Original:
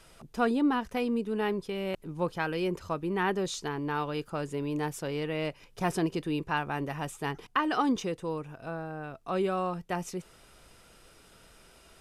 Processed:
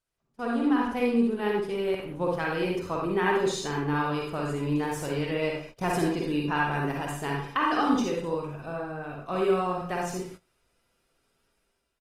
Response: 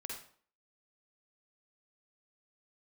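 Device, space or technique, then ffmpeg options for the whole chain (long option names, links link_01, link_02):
speakerphone in a meeting room: -filter_complex "[1:a]atrim=start_sample=2205[link_01];[0:a][link_01]afir=irnorm=-1:irlink=0,asplit=2[link_02][link_03];[link_03]adelay=120,highpass=300,lowpass=3400,asoftclip=type=hard:threshold=-26dB,volume=-15dB[link_04];[link_02][link_04]amix=inputs=2:normalize=0,dynaudnorm=framelen=130:gausssize=9:maxgain=12dB,agate=range=-19dB:threshold=-36dB:ratio=16:detection=peak,volume=-6.5dB" -ar 48000 -c:a libopus -b:a 24k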